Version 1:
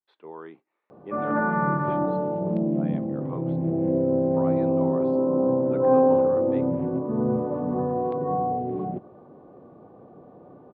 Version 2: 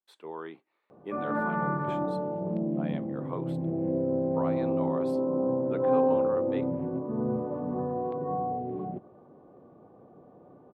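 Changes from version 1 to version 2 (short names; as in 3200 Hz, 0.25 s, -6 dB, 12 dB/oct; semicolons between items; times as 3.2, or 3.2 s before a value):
speech: remove air absorption 340 m; background -5.5 dB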